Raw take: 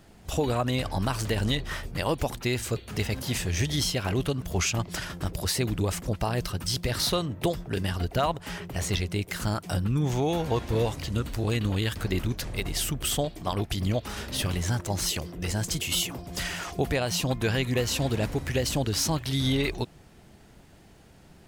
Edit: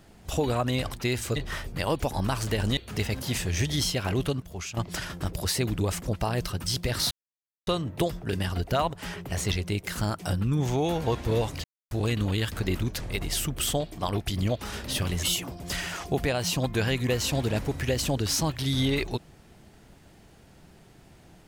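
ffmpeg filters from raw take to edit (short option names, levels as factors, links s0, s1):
-filter_complex "[0:a]asplit=11[s0][s1][s2][s3][s4][s5][s6][s7][s8][s9][s10];[s0]atrim=end=0.912[s11];[s1]atrim=start=2.318:end=2.772[s12];[s2]atrim=start=1.548:end=2.322[s13];[s3]atrim=start=0.908:end=1.552[s14];[s4]atrim=start=2.768:end=4.402[s15];[s5]atrim=start=4.398:end=4.772,asetpts=PTS-STARTPTS,volume=0.316[s16];[s6]atrim=start=4.768:end=7.11,asetpts=PTS-STARTPTS,afade=t=out:st=2.338:d=0.004:c=hsin,apad=pad_dur=0.56[s17];[s7]atrim=start=7.11:end=11.08,asetpts=PTS-STARTPTS,afade=t=in:d=0.004:c=hsin,afade=t=out:st=3.966:d=0.004:c=hsin[s18];[s8]atrim=start=11.08:end=11.35,asetpts=PTS-STARTPTS,volume=0[s19];[s9]atrim=start=11.35:end=14.672,asetpts=PTS-STARTPTS,afade=t=in:d=0.004:c=hsin[s20];[s10]atrim=start=15.898[s21];[s11][s12]acrossfade=d=0.004:c1=hsin:c2=hsin[s22];[s22][s13]acrossfade=d=0.004:c1=hsin:c2=hsin[s23];[s23][s14]acrossfade=d=0.004:c1=hsin:c2=hsin[s24];[s24][s15]acrossfade=d=0.004:c1=hsin:c2=hsin[s25];[s25][s16]acrossfade=d=0.004:c1=hsin:c2=hsin[s26];[s17][s18][s19][s20]concat=n=4:v=0:a=1[s27];[s26][s27]acrossfade=d=0.004:c1=hsin:c2=hsin[s28];[s28][s21]acrossfade=d=0.004:c1=hsin:c2=hsin"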